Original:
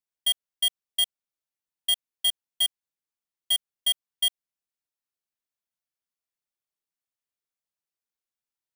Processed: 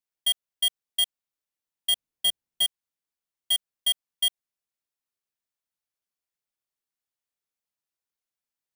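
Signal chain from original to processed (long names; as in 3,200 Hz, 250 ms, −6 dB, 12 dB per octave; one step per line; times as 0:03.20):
0:01.93–0:02.64: low-shelf EQ 390 Hz +11.5 dB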